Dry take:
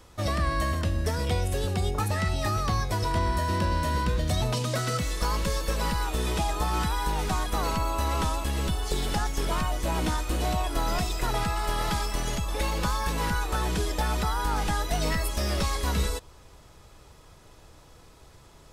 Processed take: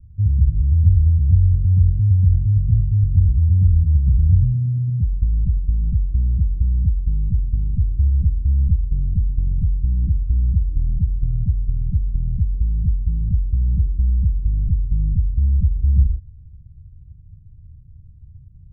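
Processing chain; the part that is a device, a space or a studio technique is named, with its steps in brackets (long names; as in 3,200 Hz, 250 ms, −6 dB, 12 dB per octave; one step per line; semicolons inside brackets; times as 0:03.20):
the neighbour's flat through the wall (low-pass filter 150 Hz 24 dB per octave; parametric band 88 Hz +7.5 dB 0.98 octaves)
0:03.92–0:04.33: parametric band 840 Hz −6.5 dB 1.4 octaves
level +8.5 dB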